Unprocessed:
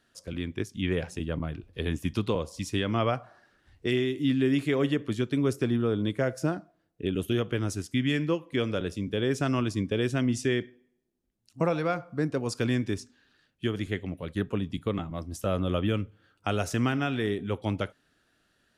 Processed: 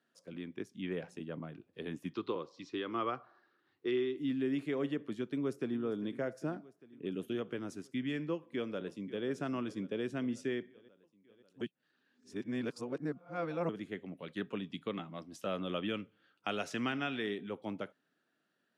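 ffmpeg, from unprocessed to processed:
-filter_complex "[0:a]asettb=1/sr,asplit=3[s0][s1][s2];[s0]atrim=end=2.104[s3];[s1]atrim=start=2.1:end=4.17,asetpts=PTS-STARTPTS,afade=t=in:d=0.004:c=qsin,afade=t=out:st=2.066:d=0.004:c=qsin,highpass=110,equalizer=f=200:t=q:w=4:g=-10,equalizer=f=360:t=q:w=4:g=6,equalizer=f=630:t=q:w=4:g=-7,equalizer=f=1200:t=q:w=4:g=7,equalizer=f=4000:t=q:w=4:g=6,lowpass=f=5500:w=0.5412,lowpass=f=5500:w=1.3066[s4];[s2]atrim=start=4.166[s5];[s3][s4]acrossfade=d=0.004:c1=hsin:c2=qsin[s6];[s6][s5]acrossfade=d=0.004:c1=qsin:c2=hsin,asplit=2[s7][s8];[s8]afade=t=in:st=5.31:d=0.01,afade=t=out:st=5.79:d=0.01,aecho=0:1:400|800|1200|1600|2000|2400|2800|3200:0.158489|0.110943|0.0776598|0.0543618|0.0380533|0.0266373|0.0186461|0.0130523[s9];[s7][s9]amix=inputs=2:normalize=0,asplit=2[s10][s11];[s11]afade=t=in:st=8.33:d=0.01,afade=t=out:st=9.26:d=0.01,aecho=0:1:540|1080|1620|2160|2700|3240|3780:0.158489|0.103018|0.0669617|0.0435251|0.0282913|0.0183894|0.0119531[s12];[s10][s12]amix=inputs=2:normalize=0,asettb=1/sr,asplit=3[s13][s14][s15];[s13]atrim=end=14.194[s16];[s14]atrim=start=14.19:end=17.49,asetpts=PTS-STARTPTS,afade=t=in:d=0.004:c=qsin,afade=t=out:st=3.296:d=0.004:c=qsin,equalizer=f=3300:w=0.58:g=9.5[s17];[s15]atrim=start=17.486[s18];[s16][s17]acrossfade=d=0.004:c1=hsin:c2=qsin[s19];[s19][s18]acrossfade=d=0.004:c1=qsin:c2=hsin,asplit=3[s20][s21][s22];[s20]atrim=end=11.612[s23];[s21]atrim=start=11.608:end=13.692,asetpts=PTS-STARTPTS,areverse[s24];[s22]atrim=start=13.688[s25];[s23][s24]acrossfade=d=0.004:c1=hsin:c2=hsin[s26];[s26][s25]acrossfade=d=0.004:c1=hsin:c2=hsin,highpass=f=160:w=0.5412,highpass=f=160:w=1.3066,highshelf=f=3400:g=-9.5,volume=0.376"

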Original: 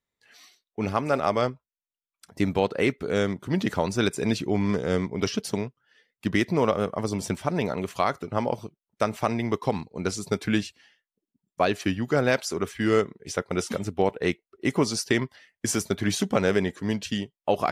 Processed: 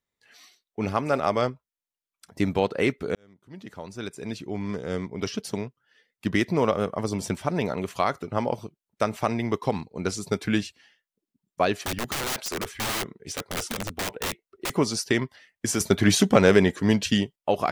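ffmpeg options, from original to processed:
-filter_complex "[0:a]asettb=1/sr,asplit=3[s0][s1][s2];[s0]atrim=end=11.734[s3];[s1]atrim=start=11.73:end=14.76,asetpts=PTS-STARTPTS,afade=t=in:d=0.004:c=qsin,afade=t=out:st=3.026:d=0.004:c=qsin,aeval=exprs='(mod(15*val(0)+1,2)-1)/15':c=same[s4];[s2]atrim=start=14.756[s5];[s3][s4]acrossfade=d=0.004:c1=hsin:c2=qsin[s6];[s6][s5]acrossfade=d=0.004:c1=qsin:c2=hsin,asettb=1/sr,asplit=3[s7][s8][s9];[s7]atrim=end=15.804[s10];[s8]atrim=start=15.8:end=17.36,asetpts=PTS-STARTPTS,afade=t=in:d=0.004:c=qsin,afade=t=out:st=1.556:d=0.004:c=qsin,acontrast=64[s11];[s9]atrim=start=17.356[s12];[s10][s11]acrossfade=d=0.004:c1=hsin:c2=qsin[s13];[s13][s12]acrossfade=d=0.004:c1=qsin:c2=hsin,asplit=2[s14][s15];[s14]atrim=end=3.15,asetpts=PTS-STARTPTS,afade=t=out:st=3.146:d=0.004:c=hsin[s16];[s15]atrim=start=3.15,asetpts=PTS-STARTPTS,afade=t=in:d=3.13[s17];[s16][s17]concat=n=2:v=0:a=1"

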